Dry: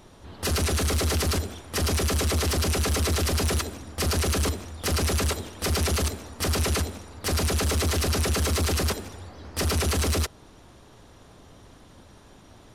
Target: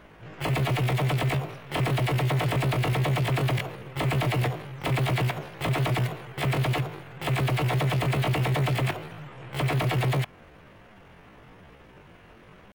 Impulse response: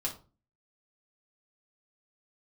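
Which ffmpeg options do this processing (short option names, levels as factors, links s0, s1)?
-af "highshelf=f=2500:t=q:w=1.5:g=-12.5,asetrate=74167,aresample=44100,atempo=0.594604"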